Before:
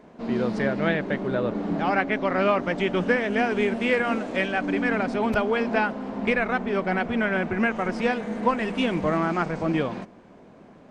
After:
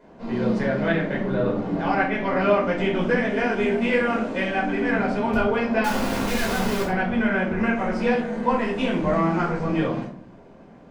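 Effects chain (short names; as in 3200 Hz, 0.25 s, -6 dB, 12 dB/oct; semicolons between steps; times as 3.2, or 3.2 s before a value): 5.84–6.83 infinite clipping; shoebox room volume 440 m³, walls furnished, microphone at 4.9 m; gain -7 dB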